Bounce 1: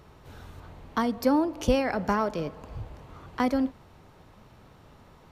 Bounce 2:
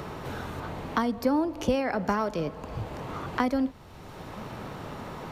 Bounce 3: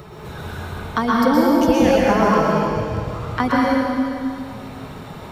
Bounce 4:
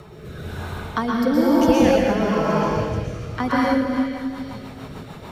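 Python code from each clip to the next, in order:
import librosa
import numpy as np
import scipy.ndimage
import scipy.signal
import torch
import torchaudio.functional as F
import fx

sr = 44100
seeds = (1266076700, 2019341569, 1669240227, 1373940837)

y1 = fx.band_squash(x, sr, depth_pct=70)
y2 = fx.bin_expand(y1, sr, power=1.5)
y2 = fx.rev_plate(y2, sr, seeds[0], rt60_s=2.5, hf_ratio=1.0, predelay_ms=105, drr_db=-6.0)
y2 = y2 * 10.0 ** (7.0 / 20.0)
y3 = fx.rotary_switch(y2, sr, hz=1.0, then_hz=6.7, switch_at_s=3.47)
y3 = fx.echo_stepped(y3, sr, ms=435, hz=2800.0, octaves=0.7, feedback_pct=70, wet_db=-9)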